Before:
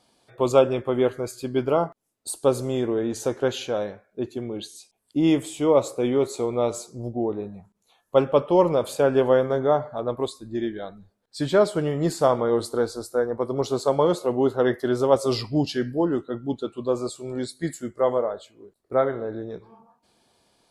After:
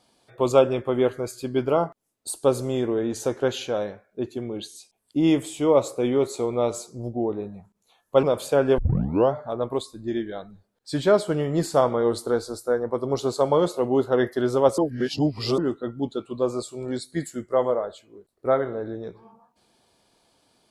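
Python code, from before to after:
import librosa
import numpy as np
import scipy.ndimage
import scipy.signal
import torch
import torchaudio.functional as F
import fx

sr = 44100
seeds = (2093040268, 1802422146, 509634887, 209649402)

y = fx.edit(x, sr, fx.cut(start_s=8.23, length_s=0.47),
    fx.tape_start(start_s=9.25, length_s=0.55),
    fx.reverse_span(start_s=15.25, length_s=0.8), tone=tone)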